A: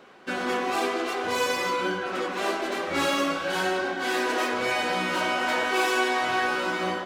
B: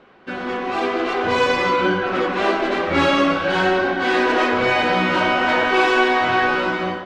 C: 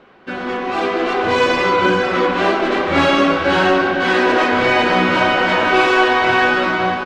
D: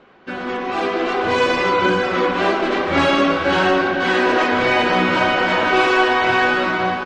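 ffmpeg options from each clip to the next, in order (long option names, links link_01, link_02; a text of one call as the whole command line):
ffmpeg -i in.wav -af "lowpass=3600,lowshelf=frequency=120:gain=12,dynaudnorm=framelen=600:gausssize=3:maxgain=8.5dB" out.wav
ffmpeg -i in.wav -af "aecho=1:1:502:0.473,volume=2.5dB" out.wav
ffmpeg -i in.wav -af "volume=-1.5dB" -ar 48000 -c:a libmp3lame -b:a 48k out.mp3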